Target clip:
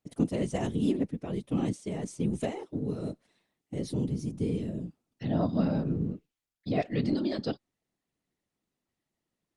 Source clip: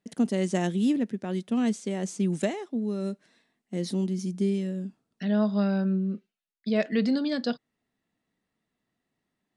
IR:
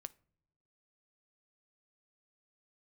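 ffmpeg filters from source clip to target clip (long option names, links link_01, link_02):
-af "equalizer=frequency=1600:width_type=o:width=0.29:gain=-8,afftfilt=real='hypot(re,im)*cos(2*PI*random(0))':imag='hypot(re,im)*sin(2*PI*random(1))':win_size=512:overlap=0.75,volume=2.5dB" -ar 48000 -c:a libopus -b:a 32k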